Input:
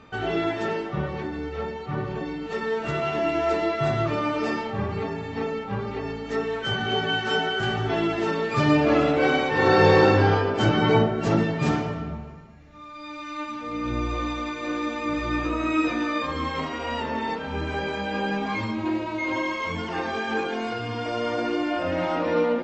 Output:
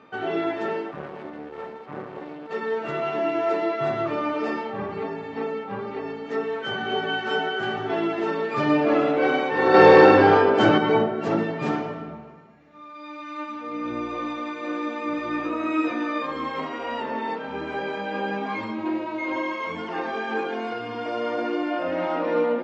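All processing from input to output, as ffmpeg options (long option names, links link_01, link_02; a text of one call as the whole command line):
ffmpeg -i in.wav -filter_complex "[0:a]asettb=1/sr,asplit=3[link_01][link_02][link_03];[link_01]atrim=end=0.914[link_04];[link_02]atrim=start=0.91:end=2.51,asetpts=PTS-STARTPTS,afade=type=in:duration=0.004:curve=qsin,afade=type=out:start_time=1.596:duration=0.004:curve=qsin,highshelf=frequency=3500:gain=-8.5,aeval=exprs='max(val(0),0)':channel_layout=same[link_05];[link_03]atrim=start=2.506[link_06];[link_04][link_05]acrossfade=duration=0.004:curve1=hsin:curve2=qsin[link_07];[link_07][link_06]acrossfade=duration=0.004:curve1=qsin:curve2=hsin,asettb=1/sr,asplit=3[link_08][link_09][link_10];[link_08]atrim=end=9.744[link_11];[link_09]atrim=start=9.74:end=10.78,asetpts=PTS-STARTPTS,afade=type=in:duration=0.004:curve=qsin,afade=type=out:start_time=1.036:duration=0.004:curve=qsin,acontrast=57,asplit=2[link_12][link_13];[link_13]adelay=47,volume=-13dB[link_14];[link_12][link_14]amix=inputs=2:normalize=0,atrim=end_sample=45864[link_15];[link_10]atrim=start=10.776[link_16];[link_11][link_15]acrossfade=duration=0.004:curve1=hsin:curve2=qsin[link_17];[link_17][link_16]acrossfade=duration=0.004:curve1=qsin:curve2=hsin,highpass=240,aemphasis=mode=reproduction:type=75fm" out.wav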